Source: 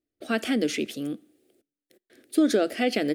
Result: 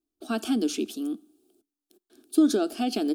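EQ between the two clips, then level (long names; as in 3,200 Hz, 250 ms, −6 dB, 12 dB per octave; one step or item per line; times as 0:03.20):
phaser with its sweep stopped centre 530 Hz, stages 6
+1.5 dB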